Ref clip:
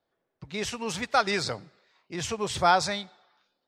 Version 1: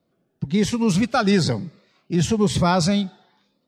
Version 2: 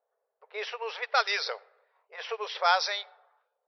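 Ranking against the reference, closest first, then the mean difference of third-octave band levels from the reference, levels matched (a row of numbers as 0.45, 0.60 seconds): 1, 2; 5.0, 11.0 decibels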